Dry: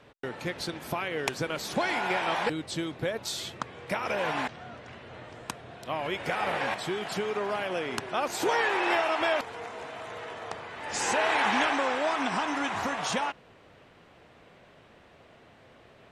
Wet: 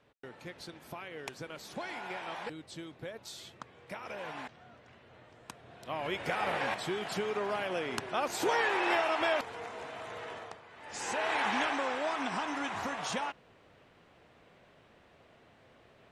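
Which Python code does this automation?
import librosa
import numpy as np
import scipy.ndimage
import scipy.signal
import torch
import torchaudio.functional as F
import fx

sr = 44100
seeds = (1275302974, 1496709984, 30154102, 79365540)

y = fx.gain(x, sr, db=fx.line((5.39, -12.0), (6.09, -3.0), (10.37, -3.0), (10.61, -13.5), (11.34, -5.5)))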